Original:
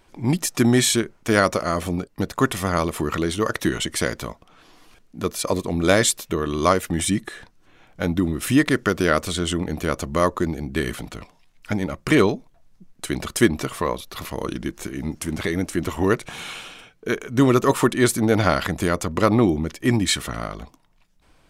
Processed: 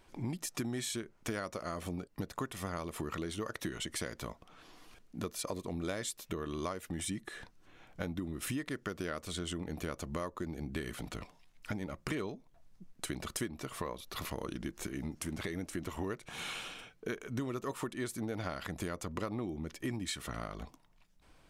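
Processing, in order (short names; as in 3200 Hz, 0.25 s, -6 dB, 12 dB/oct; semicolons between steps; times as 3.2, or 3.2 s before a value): compressor 6:1, threshold -30 dBFS, peak gain reduction 18.5 dB; gain -5.5 dB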